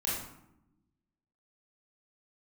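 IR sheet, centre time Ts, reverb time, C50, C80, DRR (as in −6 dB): 60 ms, 0.85 s, 0.5 dB, 5.0 dB, −6.5 dB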